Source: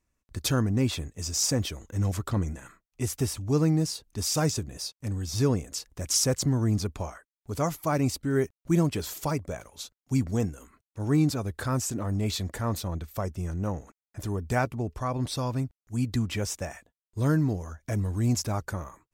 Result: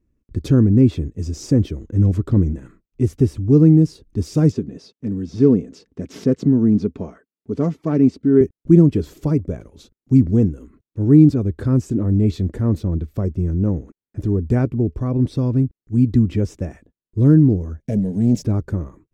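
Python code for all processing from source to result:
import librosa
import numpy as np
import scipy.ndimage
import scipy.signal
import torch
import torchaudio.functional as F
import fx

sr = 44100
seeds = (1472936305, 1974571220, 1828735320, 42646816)

y = fx.chain(x, sr, fx.self_delay(depth_ms=0.072),
    fx.bandpass_edges(low_hz=150.0, high_hz=6100.0),
    fx.comb(ms=4.5, depth=0.34), at=(4.52, 8.41))
y = fx.chain(y, sr, fx.low_shelf(hz=110.0, db=-8.5),
    fx.leveller(passes=2),
    fx.fixed_phaser(hz=320.0, stages=6), at=(17.8, 18.43))
y = fx.lowpass(y, sr, hz=2400.0, slope=6)
y = fx.low_shelf_res(y, sr, hz=530.0, db=13.0, q=1.5)
y = y * 10.0 ** (-2.0 / 20.0)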